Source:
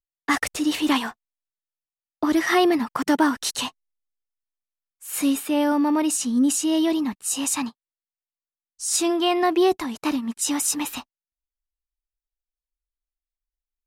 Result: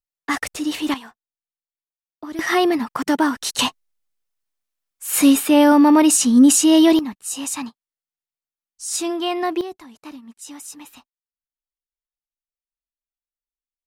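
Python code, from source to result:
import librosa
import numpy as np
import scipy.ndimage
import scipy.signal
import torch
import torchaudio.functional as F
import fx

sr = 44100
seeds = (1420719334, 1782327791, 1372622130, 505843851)

y = fx.gain(x, sr, db=fx.steps((0.0, -1.0), (0.94, -11.5), (2.39, 1.0), (3.59, 8.5), (6.99, -2.0), (9.61, -13.5)))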